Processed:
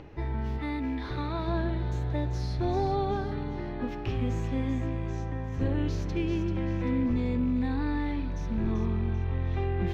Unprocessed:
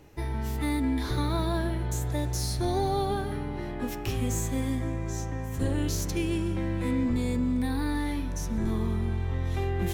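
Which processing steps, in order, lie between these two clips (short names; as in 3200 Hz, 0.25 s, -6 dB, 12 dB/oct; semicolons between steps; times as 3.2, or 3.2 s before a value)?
rattling part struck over -27 dBFS, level -40 dBFS; 0.58–1.48 low shelf 470 Hz -5.5 dB; upward compressor, threshold -39 dBFS; air absorption 260 m; on a send: thin delay 0.389 s, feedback 45%, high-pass 3600 Hz, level -7 dB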